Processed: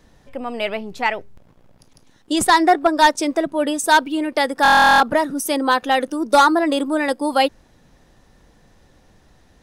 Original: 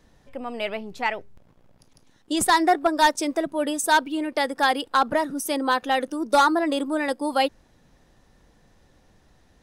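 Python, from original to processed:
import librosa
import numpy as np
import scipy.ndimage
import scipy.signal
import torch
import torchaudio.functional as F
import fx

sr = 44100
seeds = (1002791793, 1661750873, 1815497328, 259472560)

y = fx.high_shelf(x, sr, hz=9600.0, db=-6.5, at=(2.39, 3.87))
y = fx.buffer_glitch(y, sr, at_s=(4.63,), block=1024, repeats=15)
y = y * 10.0 ** (5.0 / 20.0)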